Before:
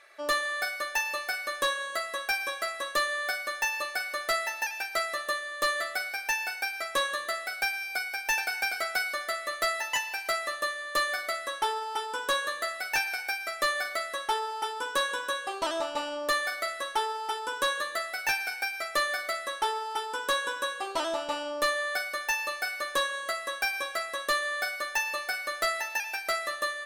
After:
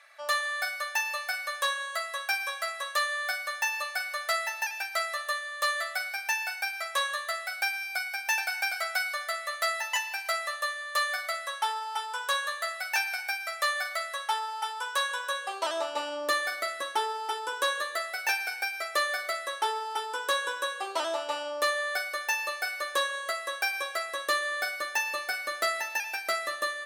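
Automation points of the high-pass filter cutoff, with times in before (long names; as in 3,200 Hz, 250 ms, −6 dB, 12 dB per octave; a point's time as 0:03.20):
high-pass filter 24 dB per octave
0:15.08 630 Hz
0:16.84 160 Hz
0:17.51 360 Hz
0:23.90 360 Hz
0:24.96 170 Hz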